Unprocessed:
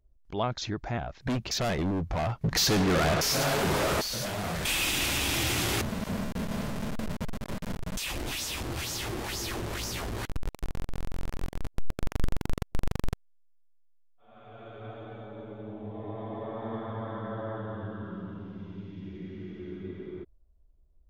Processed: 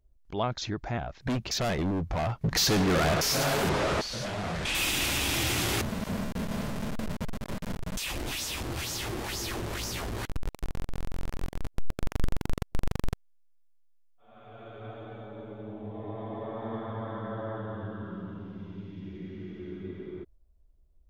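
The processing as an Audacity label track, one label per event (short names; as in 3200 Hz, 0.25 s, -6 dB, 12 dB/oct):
3.690000	4.750000	air absorption 69 m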